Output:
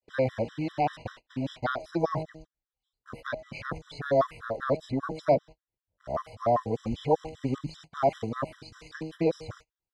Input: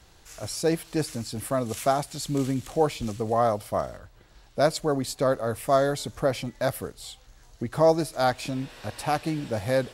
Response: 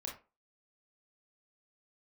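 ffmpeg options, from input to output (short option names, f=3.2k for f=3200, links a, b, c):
-filter_complex "[0:a]areverse,acrossover=split=3700[a][b];[b]acompressor=threshold=-47dB:ratio=4:attack=1:release=60[c];[a][c]amix=inputs=2:normalize=0,bandreject=f=158.1:t=h:w=4,bandreject=f=316.2:t=h:w=4,bandreject=f=474.3:t=h:w=4,bandreject=f=632.4:t=h:w=4,bandreject=f=790.5:t=h:w=4,agate=range=-37dB:threshold=-39dB:ratio=16:detection=peak,lowpass=4.7k,afftfilt=real='re*gt(sin(2*PI*5.1*pts/sr)*(1-2*mod(floor(b*sr/1024/1000),2)),0)':imag='im*gt(sin(2*PI*5.1*pts/sr)*(1-2*mod(floor(b*sr/1024/1000),2)),0)':win_size=1024:overlap=0.75"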